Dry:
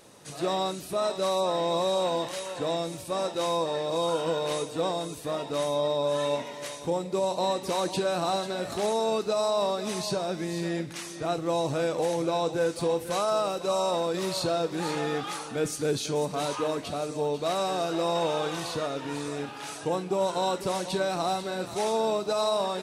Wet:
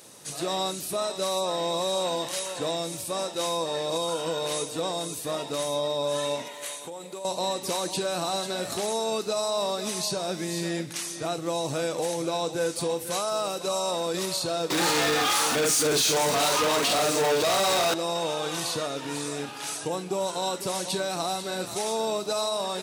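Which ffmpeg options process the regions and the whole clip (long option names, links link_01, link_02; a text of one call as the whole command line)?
ffmpeg -i in.wav -filter_complex "[0:a]asettb=1/sr,asplit=3[link_01][link_02][link_03];[link_01]atrim=end=6.484[link_04];[link_02]atrim=start=6.48:end=7.25,asetpts=PTS-STARTPTS,afade=type=in:duration=0.004:curve=qsin,afade=type=out:start_time=0.766:duration=0.004:curve=qsin,highpass=frequency=560:poles=1,equalizer=frequency=5300:width_type=o:width=0.39:gain=-10.5,acompressor=threshold=-34dB:ratio=12:attack=3.2:release=140:knee=1:detection=peak[link_05];[link_03]atrim=start=7.246[link_06];[link_04][link_05]acrossfade=duration=0.004:curve1=hsin:curve2=qsin[link_07];[link_07][link_06]acrossfade=duration=0.004:curve1=qsin:curve2=hsin,asettb=1/sr,asplit=3[link_08][link_09][link_10];[link_08]atrim=end=14.704[link_11];[link_09]atrim=start=14.7:end=17.94,asetpts=PTS-STARTPTS,afade=type=in:duration=0.004:curve=qsin,afade=type=out:start_time=3.236:duration=0.004:curve=qsin,acrusher=bits=7:mix=0:aa=0.5,asplit=2[link_12][link_13];[link_13]adelay=46,volume=-2dB[link_14];[link_12][link_14]amix=inputs=2:normalize=0,atrim=end_sample=142884,asplit=2[link_15][link_16];[link_16]highpass=frequency=720:poles=1,volume=26dB,asoftclip=type=tanh:threshold=-14.5dB[link_17];[link_15][link_17]amix=inputs=2:normalize=0,lowpass=frequency=4300:poles=1,volume=-6dB[link_18];[link_10]atrim=start=17.936[link_19];[link_11][link_18]acrossfade=duration=0.004:curve1=hsin:curve2=qsin[link_20];[link_20][link_19]acrossfade=duration=0.004:curve1=qsin:curve2=hsin,highpass=82,highshelf=frequency=4000:gain=11,alimiter=limit=-18.5dB:level=0:latency=1:release=210" out.wav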